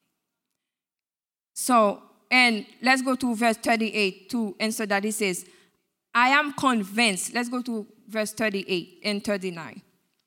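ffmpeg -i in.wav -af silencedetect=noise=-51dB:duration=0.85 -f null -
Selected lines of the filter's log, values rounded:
silence_start: 0.00
silence_end: 1.56 | silence_duration: 1.56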